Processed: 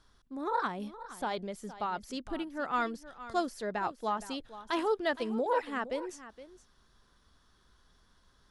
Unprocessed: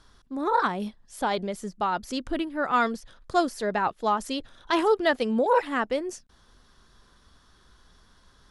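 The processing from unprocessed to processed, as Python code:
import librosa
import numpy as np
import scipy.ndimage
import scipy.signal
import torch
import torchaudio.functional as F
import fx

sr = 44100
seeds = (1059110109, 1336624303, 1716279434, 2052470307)

y = x + 10.0 ** (-15.0 / 20.0) * np.pad(x, (int(466 * sr / 1000.0), 0))[:len(x)]
y = F.gain(torch.from_numpy(y), -8.0).numpy()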